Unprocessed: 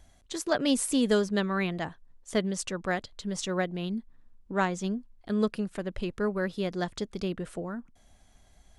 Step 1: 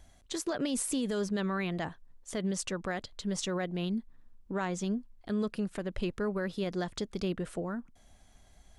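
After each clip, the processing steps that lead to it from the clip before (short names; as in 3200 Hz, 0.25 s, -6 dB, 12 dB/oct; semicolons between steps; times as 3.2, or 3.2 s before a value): limiter -23.5 dBFS, peak gain reduction 11 dB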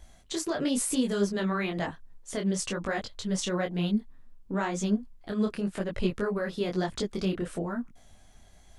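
detuned doubles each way 35 cents; gain +7.5 dB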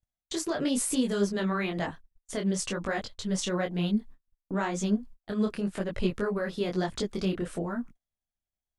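gate -42 dBFS, range -39 dB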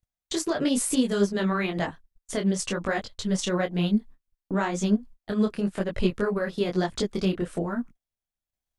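transient shaper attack +1 dB, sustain -5 dB; gain +3.5 dB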